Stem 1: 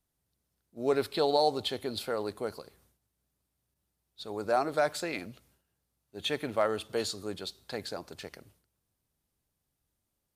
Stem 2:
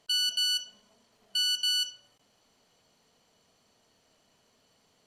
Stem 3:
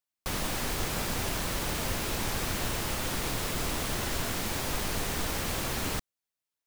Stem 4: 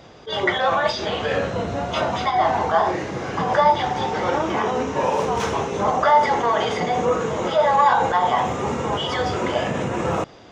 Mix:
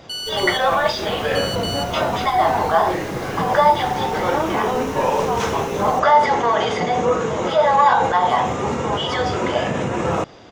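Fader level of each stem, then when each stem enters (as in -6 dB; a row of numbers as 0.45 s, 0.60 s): -12.5 dB, -1.5 dB, -9.0 dB, +2.0 dB; 1.25 s, 0.00 s, 0.00 s, 0.00 s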